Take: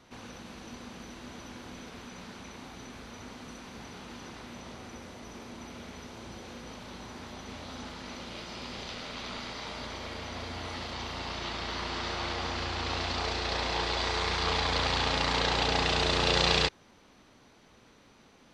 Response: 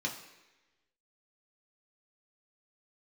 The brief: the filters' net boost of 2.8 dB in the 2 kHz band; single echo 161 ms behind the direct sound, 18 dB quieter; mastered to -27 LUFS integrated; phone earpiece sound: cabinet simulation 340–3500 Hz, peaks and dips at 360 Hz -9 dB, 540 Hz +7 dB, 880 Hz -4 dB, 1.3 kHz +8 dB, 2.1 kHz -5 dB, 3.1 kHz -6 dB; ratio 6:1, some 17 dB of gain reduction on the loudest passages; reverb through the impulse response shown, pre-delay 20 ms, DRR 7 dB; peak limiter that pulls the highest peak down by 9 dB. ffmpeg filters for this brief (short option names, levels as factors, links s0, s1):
-filter_complex "[0:a]equalizer=f=2000:t=o:g=5.5,acompressor=threshold=0.0112:ratio=6,alimiter=level_in=3.55:limit=0.0631:level=0:latency=1,volume=0.282,aecho=1:1:161:0.126,asplit=2[s0][s1];[1:a]atrim=start_sample=2205,adelay=20[s2];[s1][s2]afir=irnorm=-1:irlink=0,volume=0.282[s3];[s0][s3]amix=inputs=2:normalize=0,highpass=340,equalizer=f=360:t=q:w=4:g=-9,equalizer=f=540:t=q:w=4:g=7,equalizer=f=880:t=q:w=4:g=-4,equalizer=f=1300:t=q:w=4:g=8,equalizer=f=2100:t=q:w=4:g=-5,equalizer=f=3100:t=q:w=4:g=-6,lowpass=f=3500:w=0.5412,lowpass=f=3500:w=1.3066,volume=7.94"